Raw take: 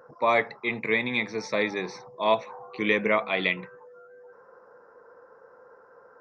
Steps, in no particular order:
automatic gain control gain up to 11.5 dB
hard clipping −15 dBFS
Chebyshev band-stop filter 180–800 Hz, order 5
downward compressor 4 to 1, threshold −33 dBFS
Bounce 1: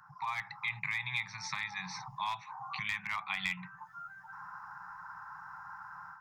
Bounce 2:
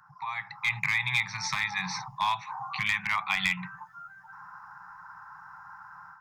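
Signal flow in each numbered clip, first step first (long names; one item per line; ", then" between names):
hard clipping, then automatic gain control, then downward compressor, then Chebyshev band-stop filter
downward compressor, then automatic gain control, then hard clipping, then Chebyshev band-stop filter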